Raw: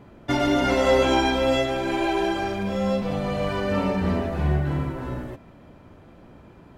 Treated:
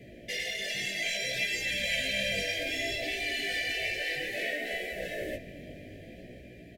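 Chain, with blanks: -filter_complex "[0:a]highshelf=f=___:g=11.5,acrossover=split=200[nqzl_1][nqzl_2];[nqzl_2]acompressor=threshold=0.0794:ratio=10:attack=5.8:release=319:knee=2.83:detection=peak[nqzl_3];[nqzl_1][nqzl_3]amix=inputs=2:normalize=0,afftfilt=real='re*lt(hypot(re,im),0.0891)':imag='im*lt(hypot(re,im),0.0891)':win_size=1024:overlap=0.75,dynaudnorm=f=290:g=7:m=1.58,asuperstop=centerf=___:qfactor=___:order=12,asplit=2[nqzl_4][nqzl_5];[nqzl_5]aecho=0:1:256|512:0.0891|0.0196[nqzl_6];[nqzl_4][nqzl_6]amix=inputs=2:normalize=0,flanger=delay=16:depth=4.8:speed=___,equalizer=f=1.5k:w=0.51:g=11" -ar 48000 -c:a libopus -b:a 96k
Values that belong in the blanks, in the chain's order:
7.4k, 1100, 0.98, 0.62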